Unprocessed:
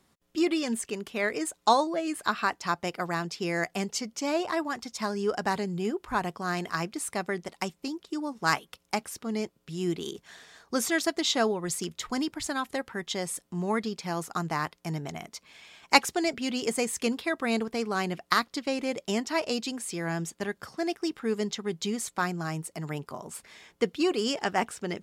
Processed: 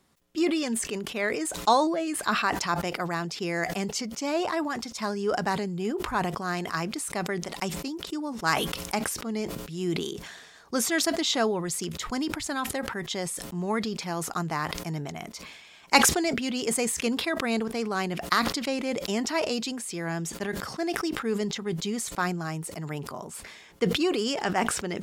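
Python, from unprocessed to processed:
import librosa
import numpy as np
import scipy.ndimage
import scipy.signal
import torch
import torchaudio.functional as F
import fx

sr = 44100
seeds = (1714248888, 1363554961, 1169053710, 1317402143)

y = fx.sustainer(x, sr, db_per_s=44.0)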